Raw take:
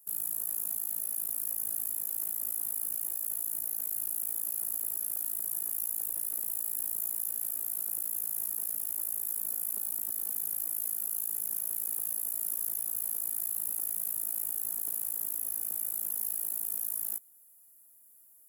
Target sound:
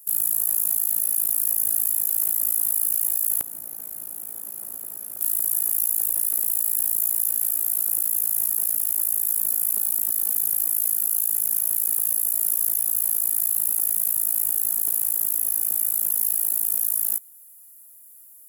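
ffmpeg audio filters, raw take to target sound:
ffmpeg -i in.wav -af "asetnsamples=nb_out_samples=441:pad=0,asendcmd='3.41 highshelf g -8;5.21 highshelf g 4',highshelf=frequency=2100:gain=4.5,volume=7dB" out.wav

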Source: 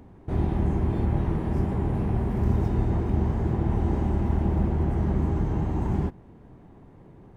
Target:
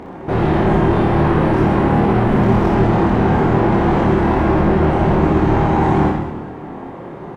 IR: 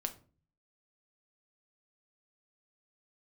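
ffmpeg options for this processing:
-filter_complex "[0:a]asplit=2[link_01][link_02];[link_02]highpass=frequency=720:poles=1,volume=30dB,asoftclip=type=tanh:threshold=-11dB[link_03];[link_01][link_03]amix=inputs=2:normalize=0,lowpass=frequency=1500:poles=1,volume=-6dB,asplit=2[link_04][link_05];[link_05]adelay=26,volume=-4dB[link_06];[link_04][link_06]amix=inputs=2:normalize=0,aecho=1:1:60|129|208.4|299.6|404.5:0.631|0.398|0.251|0.158|0.1,asplit=2[link_07][link_08];[1:a]atrim=start_sample=2205[link_09];[link_08][link_09]afir=irnorm=-1:irlink=0,volume=4dB[link_10];[link_07][link_10]amix=inputs=2:normalize=0,volume=-7dB"

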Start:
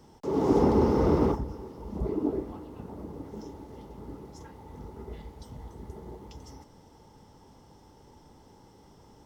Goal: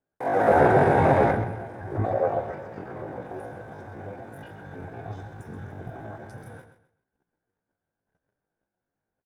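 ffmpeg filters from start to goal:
ffmpeg -i in.wav -filter_complex "[0:a]agate=range=-35dB:threshold=-49dB:ratio=16:detection=peak,highshelf=frequency=2200:gain=-11,asetrate=78577,aresample=44100,atempo=0.561231,asplit=2[link_01][link_02];[link_02]aecho=0:1:129|258|387:0.299|0.0806|0.0218[link_03];[link_01][link_03]amix=inputs=2:normalize=0,volume=4.5dB" out.wav

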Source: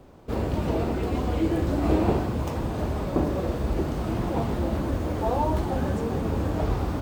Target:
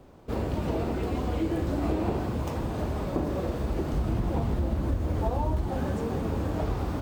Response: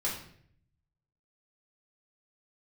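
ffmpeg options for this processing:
-filter_complex "[0:a]asettb=1/sr,asplit=3[link_01][link_02][link_03];[link_01]atrim=end=3.934[link_04];[link_02]atrim=start=3.93:end=5.7,asetpts=PTS-STARTPTS,afade=type=in:duration=0.004:curve=qsin,afade=type=out:start_time=1.766:duration=0.004:curve=qsin,lowshelf=frequency=130:gain=10.5[link_05];[link_03]atrim=start=5.696[link_06];[link_04][link_05]acrossfade=duration=0.004:curve1=hsin:curve2=qsin[link_07];[link_07][link_06]acrossfade=duration=0.004:curve1=qsin:curve2=hsin,acompressor=threshold=-21dB:ratio=6,volume=-2dB"

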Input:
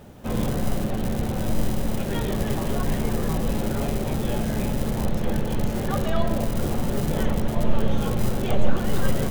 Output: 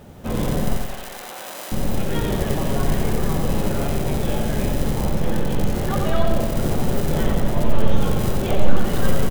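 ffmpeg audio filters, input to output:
ffmpeg -i in.wav -filter_complex "[0:a]asettb=1/sr,asplit=3[link_01][link_02][link_03];[link_01]atrim=end=0.764[link_04];[link_02]atrim=start=0.76:end=1.72,asetpts=PTS-STARTPTS,afade=type=in:duration=0.004:curve=qsin,afade=type=out:start_time=0.956:duration=0.004:curve=qsin,highpass=890[link_05];[link_03]atrim=start=1.716[link_06];[link_04][link_05]acrossfade=duration=0.004:curve1=hsin:curve2=qsin[link_07];[link_07][link_06]acrossfade=duration=0.004:curve1=qsin:curve2=hsin,aecho=1:1:89|178|267|356|445|534:0.531|0.271|0.138|0.0704|0.0359|0.0183,volume=2dB" out.wav

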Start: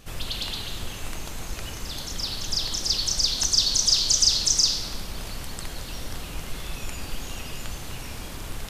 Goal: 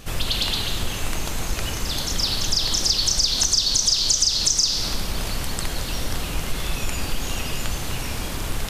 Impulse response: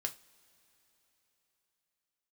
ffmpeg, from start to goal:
-af "acompressor=threshold=-24dB:ratio=6,volume=8dB"

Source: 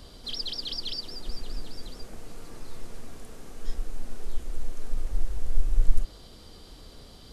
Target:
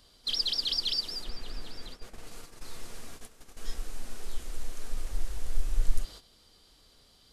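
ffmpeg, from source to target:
ffmpeg -i in.wav -filter_complex "[0:a]tiltshelf=frequency=940:gain=-5,asettb=1/sr,asplit=3[link_01][link_02][link_03];[link_01]atrim=end=1.244[link_04];[link_02]atrim=start=1.24:end=2.27,asetpts=PTS-STARTPTS,afade=type=in:duration=0.004:curve=qsin,afade=type=out:start_time=1.026:duration=0.004:curve=qsin,acrossover=split=3900[link_05][link_06];[link_06]acompressor=threshold=-54dB:ratio=4:attack=1:release=60[link_07];[link_05][link_07]amix=inputs=2:normalize=0[link_08];[link_03]atrim=start=2.266[link_09];[link_04][link_08]acrossfade=duration=0.004:curve1=hsin:curve2=qsin[link_10];[link_10][link_09]acrossfade=duration=0.004:curve1=qsin:curve2=hsin,agate=range=-12dB:threshold=-40dB:ratio=16:detection=peak" out.wav

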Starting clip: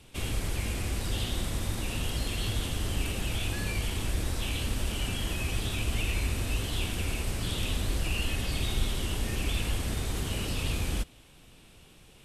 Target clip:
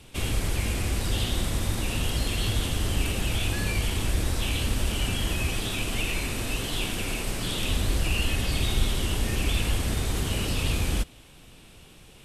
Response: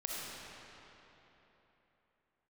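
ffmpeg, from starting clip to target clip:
-filter_complex "[0:a]asettb=1/sr,asplit=3[link_01][link_02][link_03];[link_01]atrim=end=5.524[link_04];[link_02]atrim=start=5.52:end=7.67,asetpts=PTS-STARTPTS,afade=type=in:duration=0.004:curve=qsin,afade=type=out:start_time=2.146:duration=0.004:curve=qsin,equalizer=frequency=68:width_type=o:width=0.94:gain=-14[link_05];[link_03]atrim=start=7.666[link_06];[link_04][link_05]acrossfade=duration=0.004:curve1=hsin:curve2=qsin[link_07];[link_07][link_06]acrossfade=duration=0.004:curve1=qsin:curve2=hsin,volume=4.5dB"

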